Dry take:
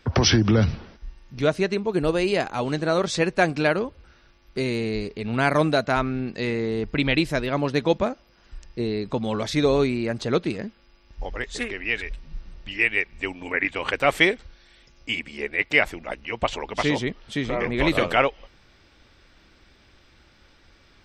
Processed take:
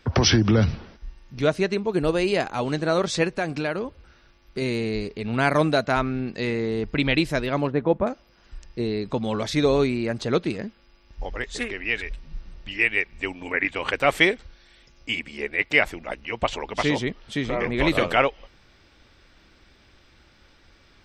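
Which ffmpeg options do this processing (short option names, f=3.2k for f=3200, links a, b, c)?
-filter_complex "[0:a]asettb=1/sr,asplit=3[a][b][c];[a]atrim=end=3.274[d];[b]atrim=start=3.27:end=4.62,asetpts=PTS-STARTPTS,afade=t=in:d=0.004:c=qsin,afade=t=out:st=1.346:d=0.004:c=qsin,acompressor=threshold=-24dB:ratio=2.5:attack=3.2:release=140:knee=1:detection=peak[e];[c]atrim=start=4.616[f];[d][e]acrossfade=d=0.004:c1=hsin:c2=qsin[g];[g][f]acrossfade=d=0.004:c1=qsin:c2=hsin,asettb=1/sr,asplit=3[h][i][j];[h]atrim=end=7.674[k];[i]atrim=start=7.67:end=8.07,asetpts=PTS-STARTPTS,afade=t=in:d=0.004:c=qsin,afade=t=out:st=0.396:d=0.004:c=qsin,lowpass=1.4k[l];[j]atrim=start=8.066[m];[k][l]acrossfade=d=0.004:c1=hsin:c2=qsin[n];[n][m]acrossfade=d=0.004:c1=qsin:c2=hsin"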